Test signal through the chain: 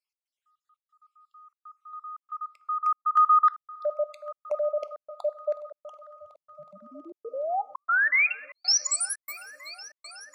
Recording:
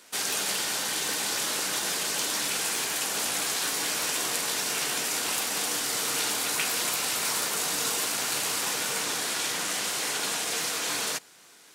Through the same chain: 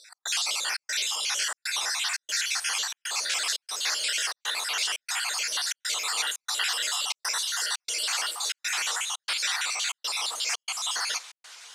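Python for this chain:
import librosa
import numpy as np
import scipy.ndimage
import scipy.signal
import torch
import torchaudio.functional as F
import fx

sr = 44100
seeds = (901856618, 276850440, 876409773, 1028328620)

p1 = fx.spec_dropout(x, sr, seeds[0], share_pct=54)
p2 = scipy.signal.sosfilt(scipy.signal.butter(2, 830.0, 'highpass', fs=sr, output='sos'), p1)
p3 = fx.high_shelf(p2, sr, hz=3600.0, db=-9.0)
p4 = p3 + fx.echo_heads(p3, sr, ms=369, heads='first and third', feedback_pct=68, wet_db=-23.5, dry=0)
p5 = fx.rev_double_slope(p4, sr, seeds[1], early_s=0.59, late_s=2.4, knee_db=-18, drr_db=15.0)
p6 = fx.rider(p5, sr, range_db=3, speed_s=0.5)
p7 = p5 + (p6 * 10.0 ** (-3.0 / 20.0))
p8 = fx.tilt_eq(p7, sr, slope=3.5)
p9 = fx.step_gate(p8, sr, bpm=118, pattern='x.xxxx.xxxx', floor_db=-60.0, edge_ms=4.5)
y = scipy.signal.sosfilt(scipy.signal.butter(2, 6300.0, 'lowpass', fs=sr, output='sos'), p9)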